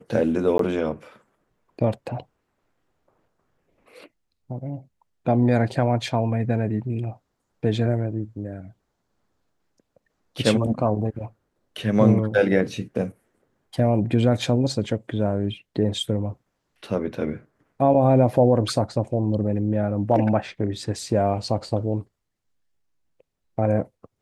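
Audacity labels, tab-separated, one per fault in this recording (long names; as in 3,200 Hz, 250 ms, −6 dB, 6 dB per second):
0.580000	0.590000	drop-out 13 ms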